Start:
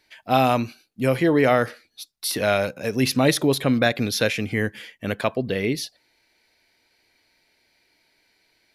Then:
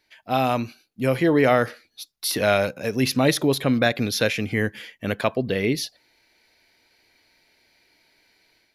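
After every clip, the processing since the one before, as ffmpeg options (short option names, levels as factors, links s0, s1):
-af "equalizer=f=8400:w=5.8:g=-6.5,dynaudnorm=f=330:g=3:m=2.24,volume=0.631"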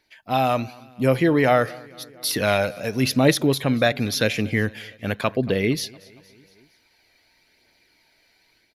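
-af "aecho=1:1:231|462|693|924:0.0708|0.0411|0.0238|0.0138,aphaser=in_gain=1:out_gain=1:delay=1.7:decay=0.29:speed=0.91:type=triangular"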